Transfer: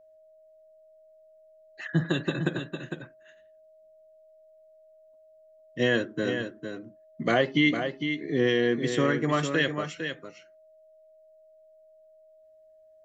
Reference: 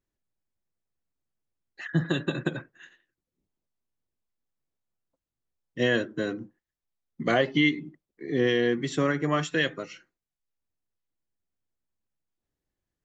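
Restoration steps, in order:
notch filter 630 Hz, Q 30
echo removal 455 ms −7.5 dB

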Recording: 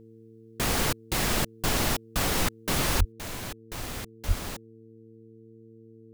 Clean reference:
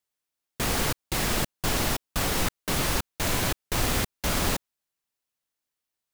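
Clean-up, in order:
hum removal 112.4 Hz, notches 4
0:02.98–0:03.10: high-pass filter 140 Hz 24 dB per octave
0:04.27–0:04.39: high-pass filter 140 Hz 24 dB per octave
level 0 dB, from 0:03.12 +10.5 dB

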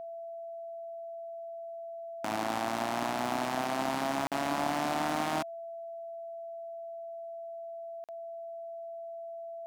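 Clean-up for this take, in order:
clipped peaks rebuilt −19.5 dBFS
notch filter 670 Hz, Q 30
repair the gap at 0:04.27/0:08.04, 47 ms

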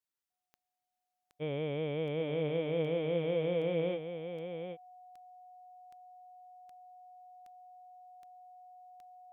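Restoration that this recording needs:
click removal
notch filter 730 Hz, Q 30
echo removal 779 ms −8 dB

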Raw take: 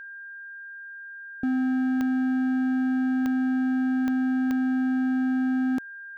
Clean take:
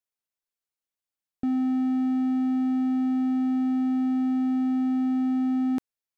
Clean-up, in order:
click removal
notch filter 1,600 Hz, Q 30

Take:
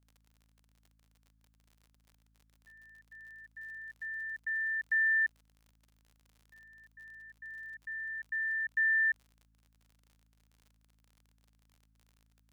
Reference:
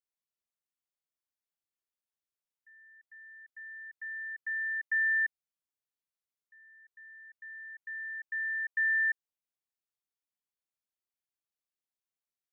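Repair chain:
click removal
hum removal 54.4 Hz, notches 5
downward expander −62 dBFS, range −21 dB

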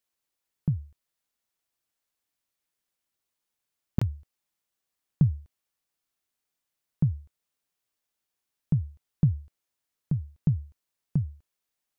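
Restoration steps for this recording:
repair the gap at 0:03.99, 25 ms

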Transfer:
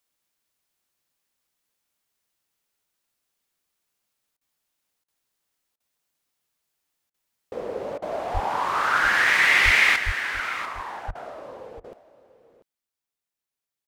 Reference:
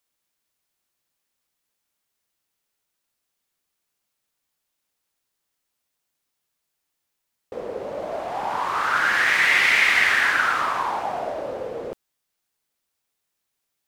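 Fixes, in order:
high-pass at the plosives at 0:08.33/0:09.64/0:10.05/0:11.07
repair the gap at 0:04.37/0:05.04/0:05.76/0:07.10/0:07.98/0:11.11/0:11.80, 40 ms
echo removal 692 ms −15.5 dB
level correction +10 dB, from 0:09.96

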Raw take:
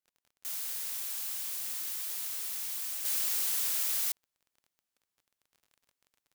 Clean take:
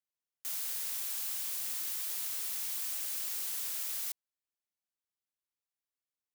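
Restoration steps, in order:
click removal
level 0 dB, from 0:03.05 −6 dB

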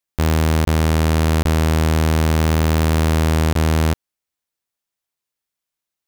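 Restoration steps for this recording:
repair the gap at 0:00.65/0:01.43/0:03.53, 23 ms

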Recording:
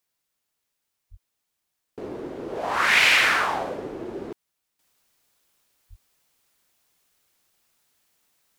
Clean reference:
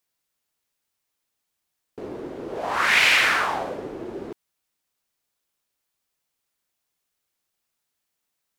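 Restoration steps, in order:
0:01.10–0:01.22: high-pass filter 140 Hz 24 dB per octave
0:04.79: level correction −10.5 dB
0:05.89–0:06.01: high-pass filter 140 Hz 24 dB per octave

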